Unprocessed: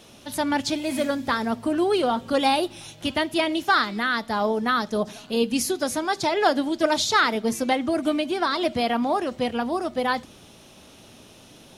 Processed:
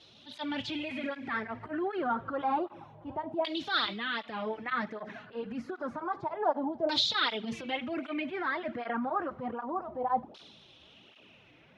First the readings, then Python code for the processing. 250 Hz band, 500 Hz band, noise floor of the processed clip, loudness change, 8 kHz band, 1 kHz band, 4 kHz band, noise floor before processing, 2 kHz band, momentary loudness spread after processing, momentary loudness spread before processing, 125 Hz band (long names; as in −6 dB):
−11.5 dB, −11.0 dB, −59 dBFS, −9.5 dB, −21.0 dB, −8.5 dB, −6.0 dB, −49 dBFS, −9.0 dB, 10 LU, 6 LU, −9.5 dB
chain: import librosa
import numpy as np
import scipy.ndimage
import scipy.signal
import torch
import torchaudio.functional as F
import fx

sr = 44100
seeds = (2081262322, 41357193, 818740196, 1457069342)

y = fx.transient(x, sr, attack_db=-8, sustain_db=6)
y = fx.filter_lfo_lowpass(y, sr, shape='saw_down', hz=0.29, low_hz=770.0, high_hz=4200.0, q=3.6)
y = fx.flanger_cancel(y, sr, hz=1.3, depth_ms=5.2)
y = y * librosa.db_to_amplitude(-8.5)